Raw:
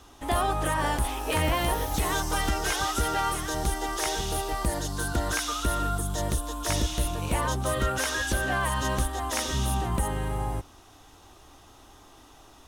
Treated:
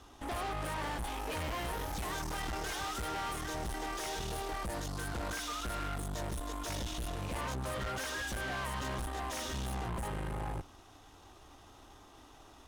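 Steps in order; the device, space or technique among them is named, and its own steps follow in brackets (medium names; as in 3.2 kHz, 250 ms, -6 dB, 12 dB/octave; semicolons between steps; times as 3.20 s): tube preamp driven hard (valve stage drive 35 dB, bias 0.65; treble shelf 6.3 kHz -6 dB)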